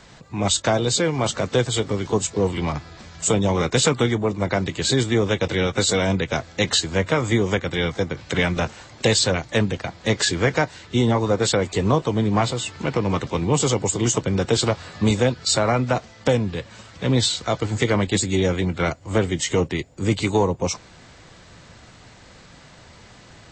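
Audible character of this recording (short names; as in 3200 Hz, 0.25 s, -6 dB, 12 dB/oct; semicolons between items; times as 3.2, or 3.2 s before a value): noise floor -47 dBFS; spectral tilt -4.5 dB/oct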